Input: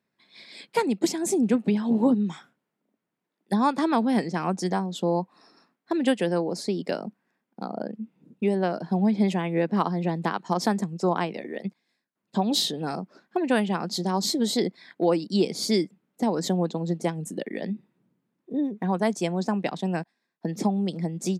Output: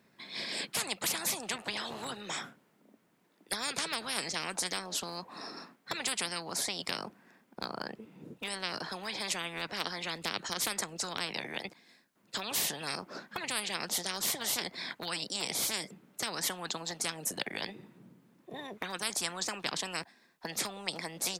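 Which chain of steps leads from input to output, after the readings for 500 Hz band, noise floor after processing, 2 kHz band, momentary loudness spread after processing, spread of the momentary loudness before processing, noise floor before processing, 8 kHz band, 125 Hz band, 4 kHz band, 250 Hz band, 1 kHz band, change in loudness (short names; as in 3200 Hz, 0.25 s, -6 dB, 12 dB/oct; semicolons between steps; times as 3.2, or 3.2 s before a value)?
-15.5 dB, -69 dBFS, 0.0 dB, 11 LU, 11 LU, -82 dBFS, +3.0 dB, -18.5 dB, 0.0 dB, -21.0 dB, -10.5 dB, -8.5 dB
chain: spectral compressor 10:1; gain -2.5 dB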